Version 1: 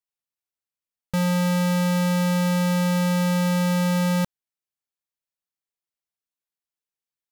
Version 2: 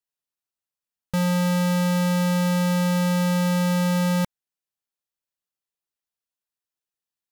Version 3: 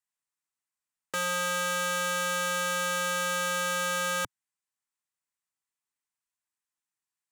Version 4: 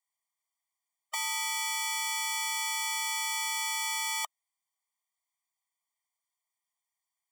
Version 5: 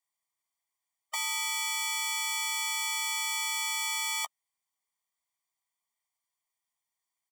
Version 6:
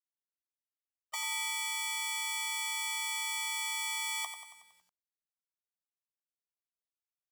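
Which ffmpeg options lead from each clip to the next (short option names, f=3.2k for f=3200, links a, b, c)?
-af "bandreject=f=2.2k:w=13"
-filter_complex "[0:a]equalizer=f=125:t=o:w=1:g=5,equalizer=f=250:t=o:w=1:g=5,equalizer=f=500:t=o:w=1:g=-5,equalizer=f=1k:t=o:w=1:g=10,equalizer=f=2k:t=o:w=1:g=9,equalizer=f=8k:t=o:w=1:g=12,acrossover=split=320|920|3500[a][b][c][d];[a]aeval=exprs='(mod(9.44*val(0)+1,2)-1)/9.44':c=same[e];[e][b][c][d]amix=inputs=4:normalize=0,volume=-8.5dB"
-af "afftfilt=real='re*eq(mod(floor(b*sr/1024/610),2),1)':imag='im*eq(mod(floor(b*sr/1024/610),2),1)':win_size=1024:overlap=0.75,volume=5dB"
-filter_complex "[0:a]asplit=2[a][b];[b]adelay=13,volume=-11dB[c];[a][c]amix=inputs=2:normalize=0"
-filter_complex "[0:a]asplit=2[a][b];[b]aecho=0:1:92|184|276|368|460|552|644:0.355|0.199|0.111|0.0623|0.0349|0.0195|0.0109[c];[a][c]amix=inputs=2:normalize=0,acrusher=bits=10:mix=0:aa=0.000001,volume=-4.5dB"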